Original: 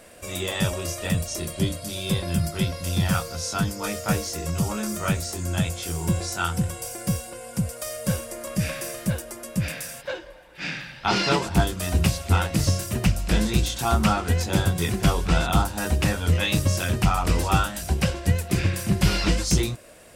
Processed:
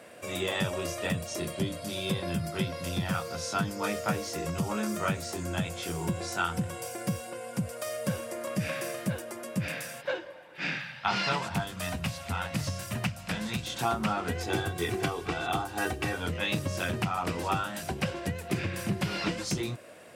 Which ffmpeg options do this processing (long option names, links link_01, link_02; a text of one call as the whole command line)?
ffmpeg -i in.wav -filter_complex "[0:a]asettb=1/sr,asplit=3[link_01][link_02][link_03];[link_01]atrim=end=10.784[link_04];[link_02]atrim=start=10.78:end=13.67,asetpts=PTS-STARTPTS,afade=type=in:duration=0.004:curve=qsin,afade=type=out:start_time=2.886:duration=0.004:curve=qsin,equalizer=frequency=360:width_type=o:width=0.87:gain=-13[link_05];[link_03]atrim=start=13.666[link_06];[link_04][link_05]acrossfade=duration=0.004:curve1=hsin:curve2=qsin[link_07];[link_07][link_06]acrossfade=duration=0.004:curve1=qsin:curve2=hsin,asettb=1/sr,asplit=3[link_08][link_09][link_10];[link_08]atrim=end=14.354[link_11];[link_09]atrim=start=14.35:end=16.18,asetpts=PTS-STARTPTS,afade=type=in:duration=0.004:curve=qsin,afade=type=out:start_time=1.826:duration=0.004:curve=qsin,aecho=1:1:2.6:0.65,atrim=end_sample=80703[link_12];[link_10]atrim=start=16.176[link_13];[link_11][link_12]acrossfade=duration=0.004:curve1=hsin:curve2=qsin[link_14];[link_14][link_13]acrossfade=duration=0.004:curve1=qsin:curve2=hsin,acompressor=threshold=-23dB:ratio=6,highpass=frequency=100:width=0.5412,highpass=frequency=100:width=1.3066,bass=frequency=250:gain=-3,treble=frequency=4000:gain=-8" out.wav